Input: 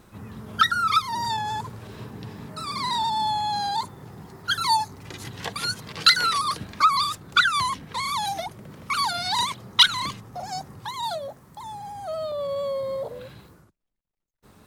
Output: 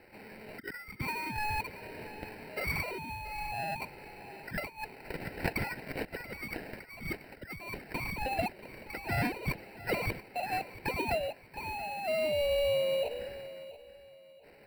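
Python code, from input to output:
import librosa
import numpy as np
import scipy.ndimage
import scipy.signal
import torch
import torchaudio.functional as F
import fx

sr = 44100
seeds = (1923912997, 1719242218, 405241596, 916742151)

y = fx.bandpass_edges(x, sr, low_hz=680.0, high_hz=4800.0)
y = fx.over_compress(y, sr, threshold_db=-31.0, ratio=-0.5)
y = fx.sample_hold(y, sr, seeds[0], rate_hz=3400.0, jitter_pct=0)
y = fx.high_shelf(y, sr, hz=3500.0, db=-9.5)
y = fx.fixed_phaser(y, sr, hz=2800.0, stages=4)
y = fx.echo_feedback(y, sr, ms=681, feedback_pct=31, wet_db=-16.0)
y = F.gain(torch.from_numpy(y), 2.5).numpy()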